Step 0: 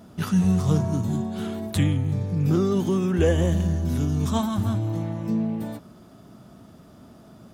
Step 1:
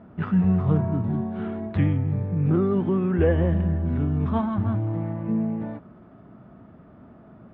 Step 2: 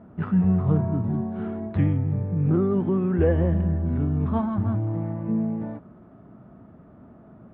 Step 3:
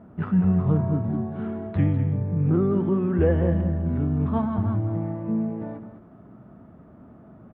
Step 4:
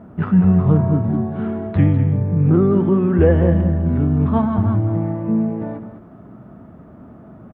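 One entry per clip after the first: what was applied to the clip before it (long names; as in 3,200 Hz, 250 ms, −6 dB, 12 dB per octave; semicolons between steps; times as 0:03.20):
low-pass filter 2,200 Hz 24 dB per octave
high-shelf EQ 2,200 Hz −9.5 dB
single-tap delay 202 ms −10.5 dB
far-end echo of a speakerphone 130 ms, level −25 dB; level +7 dB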